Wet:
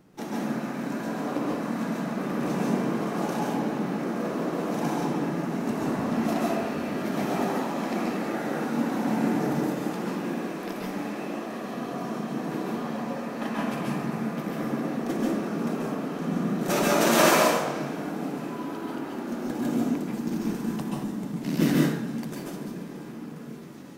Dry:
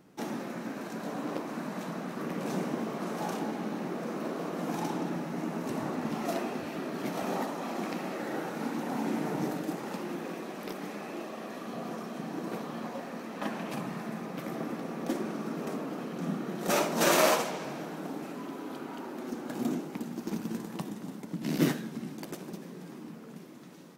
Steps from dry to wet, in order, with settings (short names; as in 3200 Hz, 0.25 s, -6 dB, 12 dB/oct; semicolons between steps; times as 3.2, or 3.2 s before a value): low shelf 100 Hz +9.5 dB; plate-style reverb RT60 0.66 s, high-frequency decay 0.6×, pre-delay 0.12 s, DRR -3.5 dB